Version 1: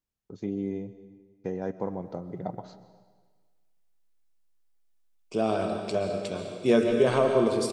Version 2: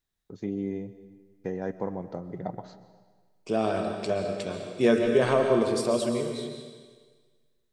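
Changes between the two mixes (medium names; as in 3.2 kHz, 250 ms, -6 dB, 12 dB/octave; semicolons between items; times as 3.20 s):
second voice: entry -1.85 s; master: add peaking EQ 1.8 kHz +6 dB 0.32 oct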